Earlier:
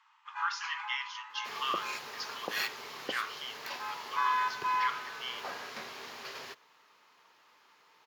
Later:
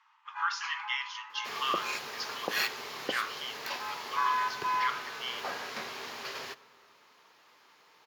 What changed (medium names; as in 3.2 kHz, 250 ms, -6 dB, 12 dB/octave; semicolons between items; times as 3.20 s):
first sound: add treble shelf 3.6 kHz -8 dB; reverb: on, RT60 2.5 s